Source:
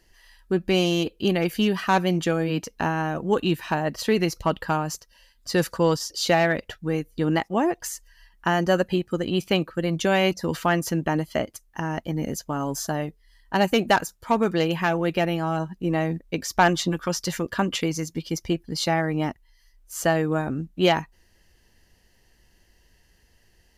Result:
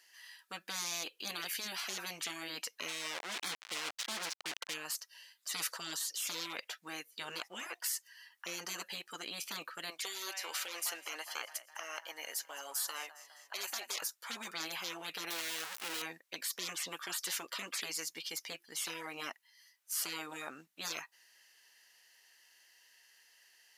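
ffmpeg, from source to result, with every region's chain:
-filter_complex "[0:a]asettb=1/sr,asplit=3[s0][s1][s2];[s0]atrim=end=2.884[s3];[s1]atrim=start=2.88:end=4.74,asetpts=PTS-STARTPTS,afade=t=in:d=0.004:c=qsin,afade=t=out:st=1.856:d=0.004:c=qsin,lowshelf=f=74:g=-3.5,aeval=exprs='val(0)*gte(abs(val(0)),0.0355)':c=same,adynamicsmooth=sensitivity=6:basefreq=2200[s4];[s2]atrim=start=4.736[s5];[s3][s4]acrossfade=d=0.004:c1=hsin:c2=qsin[s6];[s6][s5]acrossfade=d=0.004:c1=qsin:c2=hsin,asettb=1/sr,asplit=3[s7][s8][s9];[s7]atrim=end=9.904[s10];[s8]atrim=start=9.9:end=14.02,asetpts=PTS-STARTPTS,afade=t=in:d=0.004:c=qsin,afade=t=out:st=4.116:d=0.004:c=qsin,highpass=570,aecho=1:1:203|406|609|812:0.075|0.0442|0.0261|0.0154,atrim=end_sample=181692[s11];[s9]atrim=start=14.016[s12];[s10][s11]acrossfade=d=0.004:c1=hsin:c2=qsin[s13];[s13][s12]acrossfade=d=0.004:c1=qsin:c2=hsin,asettb=1/sr,asplit=3[s14][s15][s16];[s14]atrim=end=15.304[s17];[s15]atrim=start=15.3:end=16.02,asetpts=PTS-STARTPTS,afade=t=in:d=0.004:c=qsin,afade=t=out:st=0.716:d=0.004:c=qsin,aeval=exprs='val(0)+0.5*0.0422*sgn(val(0))':c=same,agate=range=0.0224:threshold=0.0355:ratio=3:release=100:detection=peak,lowshelf=f=250:g=-10.5[s18];[s16]atrim=start=16.016[s19];[s17][s18]acrossfade=d=0.004:c1=hsin:c2=qsin[s20];[s20][s19]acrossfade=d=0.004:c1=qsin:c2=hsin,highpass=1300,afftfilt=real='re*lt(hypot(re,im),0.0355)':imag='im*lt(hypot(re,im),0.0355)':win_size=1024:overlap=0.75,volume=1.26"

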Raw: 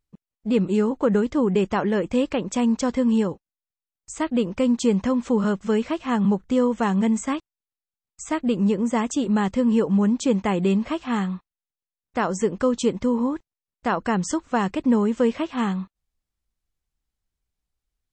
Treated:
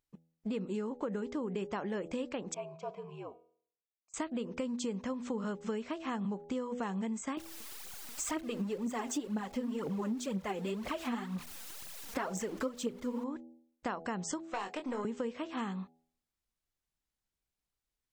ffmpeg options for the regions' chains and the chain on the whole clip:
-filter_complex "[0:a]asettb=1/sr,asplit=3[s0][s1][s2];[s0]atrim=end=2.544[s3];[s1]atrim=start=2.54:end=4.14,asetpts=PTS-STARTPTS,afade=t=in:d=0.004:c=qsin,afade=t=out:st=1.596:d=0.004:c=qsin,asplit=3[s4][s5][s6];[s4]bandpass=f=730:t=q:w=8,volume=1[s7];[s5]bandpass=f=1090:t=q:w=8,volume=0.501[s8];[s6]bandpass=f=2440:t=q:w=8,volume=0.355[s9];[s7][s8][s9]amix=inputs=3:normalize=0,bandreject=f=259:t=h:w=4,bandreject=f=518:t=h:w=4,bandreject=f=777:t=h:w=4,bandreject=f=1036:t=h:w=4,bandreject=f=1295:t=h:w=4,bandreject=f=1554:t=h:w=4,bandreject=f=1813:t=h:w=4,bandreject=f=2072:t=h:w=4,bandreject=f=2331:t=h:w=4,bandreject=f=2590:t=h:w=4,bandreject=f=2849:t=h:w=4,bandreject=f=3108:t=h:w=4,bandreject=f=3367:t=h:w=4,bandreject=f=3626:t=h:w=4,bandreject=f=3885:t=h:w=4,bandreject=f=4144:t=h:w=4,bandreject=f=4403:t=h:w=4,bandreject=f=4662:t=h:w=4,bandreject=f=4921:t=h:w=4,bandreject=f=5180:t=h:w=4,bandreject=f=5439:t=h:w=4,bandreject=f=5698:t=h:w=4,bandreject=f=5957:t=h:w=4,bandreject=f=6216:t=h:w=4,bandreject=f=6475:t=h:w=4,bandreject=f=6734:t=h:w=4,bandreject=f=6993:t=h:w=4,bandreject=f=7252:t=h:w=4,bandreject=f=7511:t=h:w=4,bandreject=f=7770:t=h:w=4,bandreject=f=8029:t=h:w=4,bandreject=f=8288:t=h:w=4,bandreject=f=8547:t=h:w=4,afreqshift=-69[s10];[s2]atrim=start=4.136[s11];[s3][s10]acrossfade=d=0.004:c1=hsin:c2=qsin[s12];[s12][s11]acrossfade=d=0.004:c1=qsin:c2=hsin,asettb=1/sr,asplit=3[s13][s14][s15];[s13]atrim=end=7.374[s16];[s14]atrim=start=7.37:end=13.24,asetpts=PTS-STARTPTS,afade=t=in:d=0.004:c=qsin,afade=t=out:st=5.866:d=0.004:c=qsin,aeval=exprs='val(0)+0.5*0.0168*sgn(val(0))':c=same,aphaser=in_gain=1:out_gain=1:delay=4.6:decay=0.67:speed=2:type=triangular[s17];[s15]atrim=start=13.236[s18];[s16][s17]acrossfade=d=0.004:c1=hsin:c2=qsin[s19];[s19][s18]acrossfade=d=0.004:c1=qsin:c2=hsin,asettb=1/sr,asplit=3[s20][s21][s22];[s20]atrim=end=14.414[s23];[s21]atrim=start=14.41:end=15.05,asetpts=PTS-STARTPTS,afade=t=in:d=0.004:c=qsin,afade=t=out:st=0.636:d=0.004:c=qsin,highpass=410,aeval=exprs='(tanh(7.94*val(0)+0.5)-tanh(0.5))/7.94':c=same,asplit=2[s24][s25];[s25]adelay=24,volume=0.447[s26];[s24][s26]amix=inputs=2:normalize=0,atrim=end_sample=28224[s27];[s22]atrim=start=15.046[s28];[s23][s27]acrossfade=d=0.004:c1=hsin:c2=qsin[s29];[s29][s28]acrossfade=d=0.004:c1=qsin:c2=hsin,lowshelf=f=110:g=-11,bandreject=f=81.85:t=h:w=4,bandreject=f=163.7:t=h:w=4,bandreject=f=245.55:t=h:w=4,bandreject=f=327.4:t=h:w=4,bandreject=f=409.25:t=h:w=4,bandreject=f=491.1:t=h:w=4,bandreject=f=572.95:t=h:w=4,bandreject=f=654.8:t=h:w=4,bandreject=f=736.65:t=h:w=4,bandreject=f=818.5:t=h:w=4,acompressor=threshold=0.0282:ratio=6,volume=0.708"

